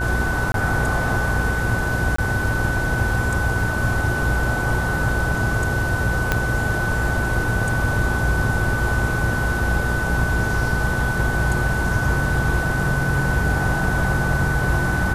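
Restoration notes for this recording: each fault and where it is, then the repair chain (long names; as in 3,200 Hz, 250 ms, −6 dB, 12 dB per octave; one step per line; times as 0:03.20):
mains buzz 60 Hz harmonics 16 −26 dBFS
whistle 1,500 Hz −24 dBFS
0:00.52–0:00.54: drop-out 22 ms
0:02.16–0:02.18: drop-out 24 ms
0:06.32: click −4 dBFS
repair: click removal
hum removal 60 Hz, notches 16
notch filter 1,500 Hz, Q 30
repair the gap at 0:00.52, 22 ms
repair the gap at 0:02.16, 24 ms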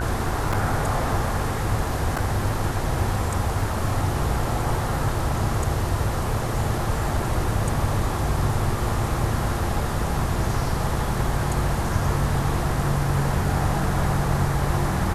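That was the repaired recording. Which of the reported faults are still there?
0:06.32: click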